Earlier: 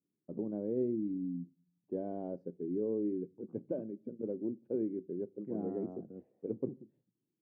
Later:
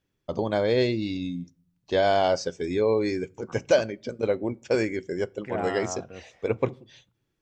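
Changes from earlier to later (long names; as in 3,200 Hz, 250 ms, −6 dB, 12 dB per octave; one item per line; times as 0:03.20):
first voice +5.5 dB
master: remove flat-topped band-pass 250 Hz, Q 1.2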